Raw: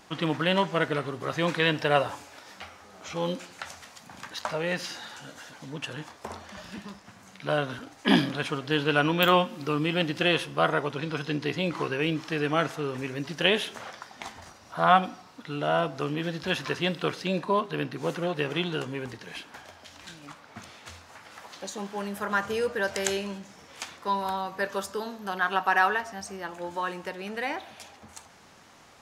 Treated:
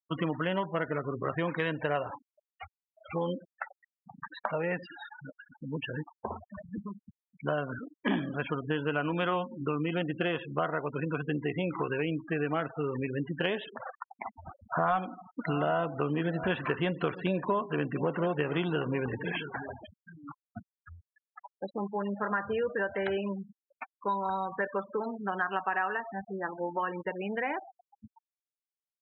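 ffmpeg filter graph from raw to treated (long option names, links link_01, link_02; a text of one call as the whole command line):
ffmpeg -i in.wav -filter_complex "[0:a]asettb=1/sr,asplit=3[link_01][link_02][link_03];[link_01]atrim=end=14.444[link_04];[link_02]atrim=start=14.44:end=19.94,asetpts=PTS-STARTPTS,afade=type=in:duration=0.004:curve=qsin,afade=type=out:start_time=5.496:duration=0.004:curve=qsin,acontrast=73,aecho=1:1:681:0.112,atrim=end_sample=242550[link_05];[link_03]atrim=start=19.936[link_06];[link_04][link_05]acrossfade=duration=0.004:curve1=hsin:curve2=qsin[link_07];[link_07][link_06]acrossfade=duration=0.004:curve1=qsin:curve2=hsin,acrossover=split=2700[link_08][link_09];[link_09]acompressor=threshold=-47dB:ratio=4:attack=1:release=60[link_10];[link_08][link_10]amix=inputs=2:normalize=0,afftfilt=real='re*gte(hypot(re,im),0.0251)':imag='im*gte(hypot(re,im),0.0251)':win_size=1024:overlap=0.75,acompressor=threshold=-31dB:ratio=4,volume=3dB" out.wav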